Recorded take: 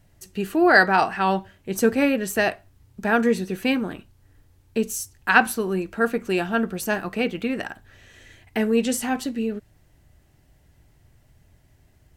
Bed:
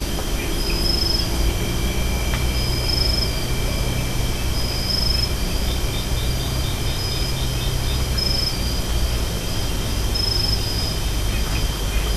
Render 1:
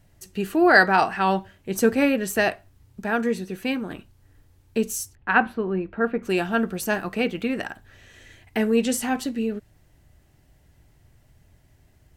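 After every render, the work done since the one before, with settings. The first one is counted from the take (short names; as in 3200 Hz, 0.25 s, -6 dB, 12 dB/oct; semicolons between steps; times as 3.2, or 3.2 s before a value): 3.02–3.9 gain -4 dB; 5.15–6.23 air absorption 460 m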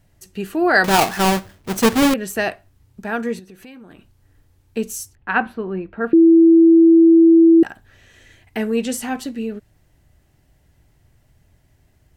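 0.84–2.14 half-waves squared off; 3.39–4.77 compressor 4:1, threshold -40 dBFS; 6.13–7.63 bleep 330 Hz -6.5 dBFS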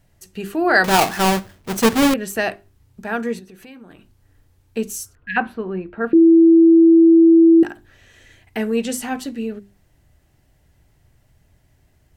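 5.05–5.35 spectral repair 270–1600 Hz before; notches 50/100/150/200/250/300/350/400 Hz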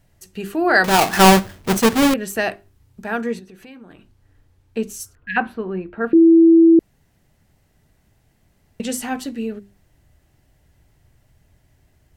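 1.13–1.78 gain +7 dB; 3.2–4.99 high shelf 11000 Hz -> 5500 Hz -8 dB; 6.79–8.8 room tone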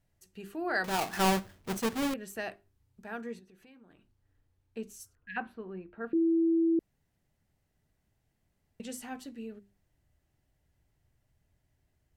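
gain -16 dB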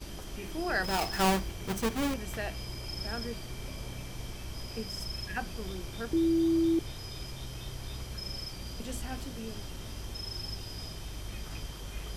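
add bed -18.5 dB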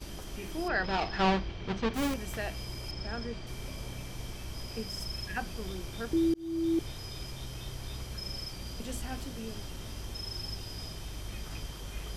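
0.68–1.94 LPF 4500 Hz 24 dB/oct; 2.91–3.47 air absorption 100 m; 6.34–6.8 fade in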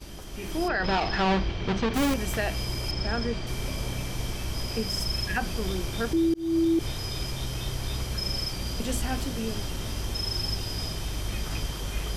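limiter -26.5 dBFS, peak gain reduction 9 dB; AGC gain up to 9 dB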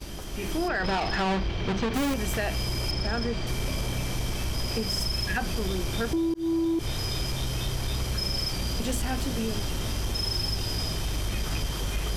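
compressor, threshold -26 dBFS, peak gain reduction 5.5 dB; sample leveller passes 1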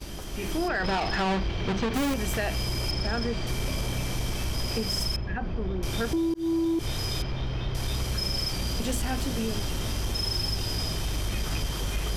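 5.16–5.83 tape spacing loss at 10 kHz 44 dB; 7.22–7.75 air absorption 260 m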